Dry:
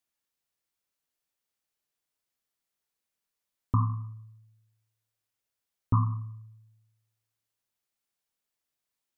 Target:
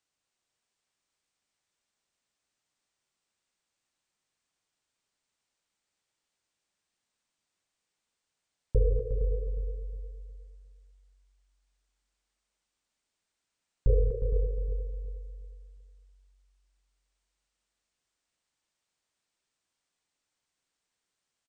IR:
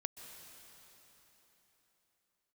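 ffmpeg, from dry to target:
-filter_complex "[0:a]asplit=2[link_01][link_02];[link_02]aecho=0:1:105|198.3:0.398|0.316[link_03];[link_01][link_03]amix=inputs=2:normalize=0,asetrate=18846,aresample=44100,asplit=2[link_04][link_05];[link_05]aecho=0:1:360|720|1080|1440:0.355|0.114|0.0363|0.0116[link_06];[link_04][link_06]amix=inputs=2:normalize=0"

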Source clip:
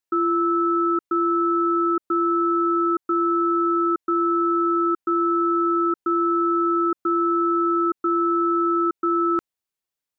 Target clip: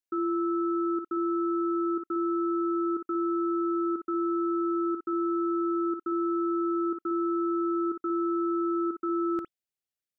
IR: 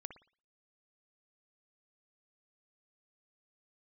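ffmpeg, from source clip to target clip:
-filter_complex "[0:a]equalizer=frequency=1000:width=3.3:gain=-14.5[link_01];[1:a]atrim=start_sample=2205,atrim=end_sample=3969[link_02];[link_01][link_02]afir=irnorm=-1:irlink=0,volume=-1.5dB"

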